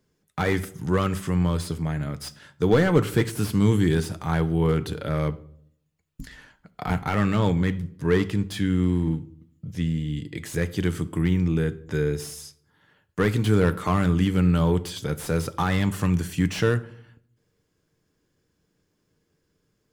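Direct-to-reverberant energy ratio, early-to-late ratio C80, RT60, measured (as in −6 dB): 11.5 dB, 22.0 dB, 0.65 s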